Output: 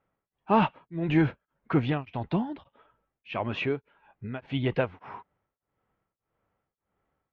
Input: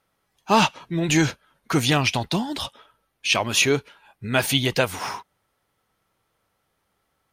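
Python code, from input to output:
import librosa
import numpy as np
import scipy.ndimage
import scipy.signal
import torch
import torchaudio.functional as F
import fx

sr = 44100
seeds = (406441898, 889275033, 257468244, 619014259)

y = scipy.signal.sosfilt(scipy.signal.butter(4, 2800.0, 'lowpass', fs=sr, output='sos'), x)
y = fx.tilt_shelf(y, sr, db=4.5, hz=1400.0)
y = y * np.abs(np.cos(np.pi * 1.7 * np.arange(len(y)) / sr))
y = y * librosa.db_to_amplitude(-6.5)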